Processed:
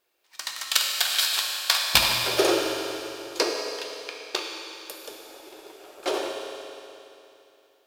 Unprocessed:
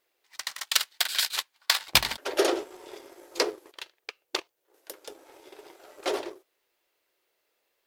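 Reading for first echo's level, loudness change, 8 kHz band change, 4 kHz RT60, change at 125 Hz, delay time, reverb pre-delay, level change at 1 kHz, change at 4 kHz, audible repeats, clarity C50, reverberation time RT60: no echo, +3.0 dB, +4.0 dB, 2.8 s, +4.0 dB, no echo, 9 ms, +4.0 dB, +4.5 dB, no echo, 1.5 dB, 2.9 s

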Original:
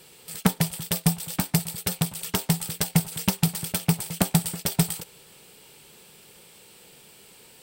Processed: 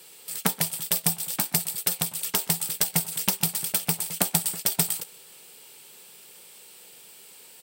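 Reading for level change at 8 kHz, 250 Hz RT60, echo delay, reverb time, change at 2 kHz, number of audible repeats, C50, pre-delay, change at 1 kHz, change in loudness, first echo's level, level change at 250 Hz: +3.5 dB, no reverb, 127 ms, no reverb, -0.5 dB, 1, no reverb, no reverb, -1.5 dB, +1.0 dB, -22.5 dB, -8.5 dB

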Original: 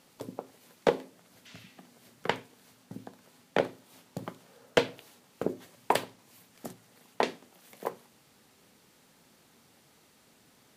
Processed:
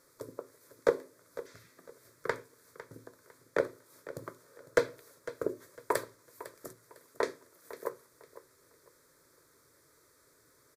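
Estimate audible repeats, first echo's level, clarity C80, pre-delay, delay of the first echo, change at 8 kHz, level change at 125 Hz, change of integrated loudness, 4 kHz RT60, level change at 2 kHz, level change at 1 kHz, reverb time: 2, -15.5 dB, no reverb, no reverb, 503 ms, -1.5 dB, -7.0 dB, -3.0 dB, no reverb, -2.5 dB, -6.0 dB, no reverb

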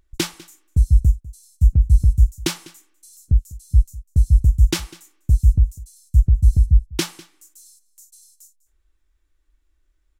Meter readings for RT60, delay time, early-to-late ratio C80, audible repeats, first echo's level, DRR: no reverb, 199 ms, no reverb, 1, -21.0 dB, no reverb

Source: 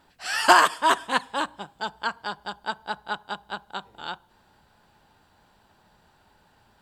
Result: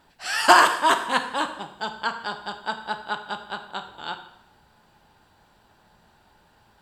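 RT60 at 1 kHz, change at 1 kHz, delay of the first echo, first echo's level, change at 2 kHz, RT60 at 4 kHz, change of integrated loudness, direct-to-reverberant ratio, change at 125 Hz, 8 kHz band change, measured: 0.80 s, +1.5 dB, no echo, no echo, +1.5 dB, 0.75 s, +1.5 dB, 7.0 dB, +1.5 dB, +1.5 dB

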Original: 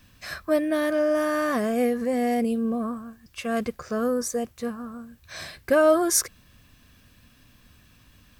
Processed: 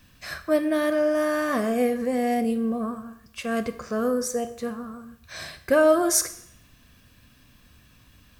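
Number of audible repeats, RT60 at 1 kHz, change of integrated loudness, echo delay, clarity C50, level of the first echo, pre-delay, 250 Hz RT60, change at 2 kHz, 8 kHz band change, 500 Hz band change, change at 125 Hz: no echo, 0.75 s, +0.5 dB, no echo, 13.0 dB, no echo, 14 ms, 0.75 s, +0.5 dB, +0.5 dB, +0.5 dB, +0.5 dB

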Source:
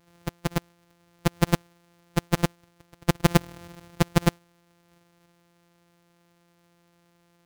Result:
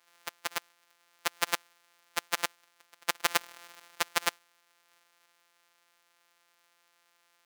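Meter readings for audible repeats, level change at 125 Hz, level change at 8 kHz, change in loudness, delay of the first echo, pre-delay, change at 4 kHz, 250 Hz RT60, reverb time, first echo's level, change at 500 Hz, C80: no echo, -32.5 dB, +1.0 dB, -6.0 dB, no echo, no reverb, +1.0 dB, no reverb, no reverb, no echo, -12.0 dB, no reverb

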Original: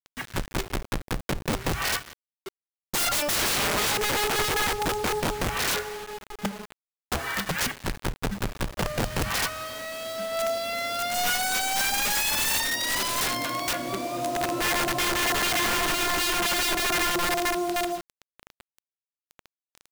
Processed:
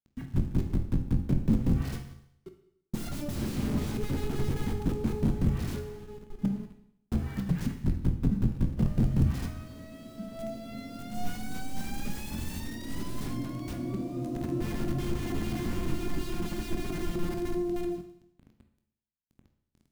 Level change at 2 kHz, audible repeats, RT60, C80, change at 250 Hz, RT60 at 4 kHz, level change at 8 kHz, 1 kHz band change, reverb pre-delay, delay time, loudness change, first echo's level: -19.5 dB, no echo, 0.75 s, 12.0 dB, +3.5 dB, 0.75 s, -20.0 dB, -16.5 dB, 14 ms, no echo, -7.0 dB, no echo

